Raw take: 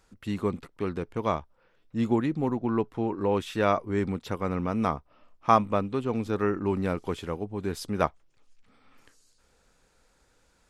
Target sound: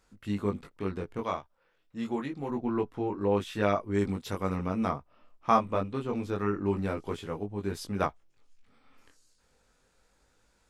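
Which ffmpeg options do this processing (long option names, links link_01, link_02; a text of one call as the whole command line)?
ffmpeg -i in.wav -filter_complex "[0:a]asettb=1/sr,asplit=3[link_01][link_02][link_03];[link_01]atrim=end=1.214[link_04];[link_02]atrim=start=1.21:end=2.5,asetpts=PTS-STARTPTS,afade=type=in:duration=0.004:curve=qsin,afade=type=out:start_time=1.286:duration=0.004:curve=qsin,lowshelf=frequency=440:gain=-8[link_05];[link_03]atrim=start=2.496[link_06];[link_04][link_05]acrossfade=duration=0.004:curve1=hsin:curve2=qsin[link_07];[link_07][link_06]acrossfade=duration=0.004:curve1=qsin:curve2=hsin,flanger=delay=19.5:depth=2.7:speed=0.28,asettb=1/sr,asplit=3[link_08][link_09][link_10];[link_08]atrim=end=3.944[link_11];[link_09]atrim=start=3.94:end=4.68,asetpts=PTS-STARTPTS,afade=type=in:duration=0.004:curve=qsin,afade=type=out:start_time=0.736:duration=0.004:curve=qsin,highshelf=frequency=4700:gain=9.5[link_12];[link_10]atrim=start=4.676[link_13];[link_11][link_12]acrossfade=duration=0.004:curve1=hsin:curve2=qsin[link_14];[link_14][link_13]acrossfade=duration=0.004:curve1=qsin:curve2=hsin" out.wav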